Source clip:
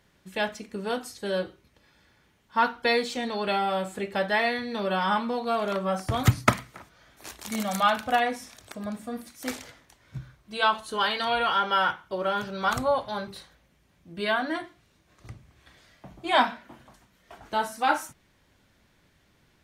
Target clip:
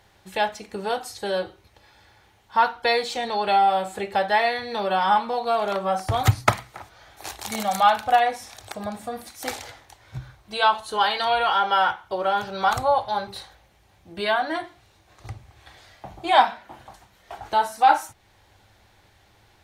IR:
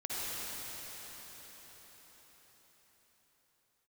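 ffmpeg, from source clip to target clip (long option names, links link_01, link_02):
-filter_complex "[0:a]equalizer=frequency=100:width_type=o:width=0.33:gain=6,equalizer=frequency=160:width_type=o:width=0.33:gain=-11,equalizer=frequency=250:width_type=o:width=0.33:gain=-10,equalizer=frequency=800:width_type=o:width=0.33:gain=10,equalizer=frequency=4000:width_type=o:width=0.33:gain=3,asplit=2[link_01][link_02];[link_02]acompressor=threshold=-36dB:ratio=6,volume=0dB[link_03];[link_01][link_03]amix=inputs=2:normalize=0"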